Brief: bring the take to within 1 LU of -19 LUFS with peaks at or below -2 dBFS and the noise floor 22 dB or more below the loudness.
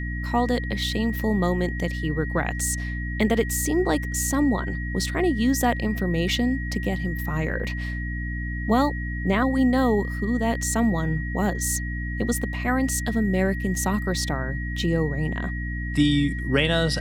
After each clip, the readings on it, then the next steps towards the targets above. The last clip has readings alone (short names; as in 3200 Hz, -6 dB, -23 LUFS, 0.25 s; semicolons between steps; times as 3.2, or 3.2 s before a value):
hum 60 Hz; harmonics up to 300 Hz; hum level -27 dBFS; steady tone 1900 Hz; tone level -34 dBFS; loudness -24.5 LUFS; peak -8.0 dBFS; loudness target -19.0 LUFS
-> de-hum 60 Hz, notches 5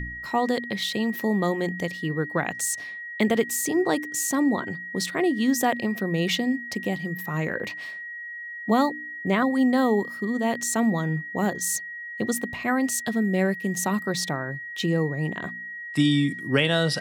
hum none; steady tone 1900 Hz; tone level -34 dBFS
-> notch 1900 Hz, Q 30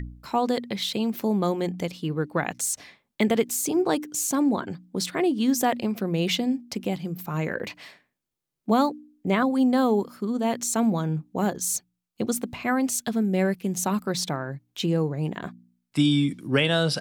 steady tone none; loudness -25.5 LUFS; peak -9.0 dBFS; loudness target -19.0 LUFS
-> gain +6.5 dB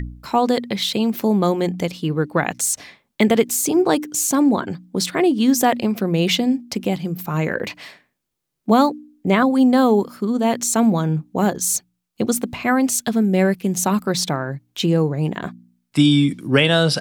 loudness -19.0 LUFS; peak -2.5 dBFS; noise floor -74 dBFS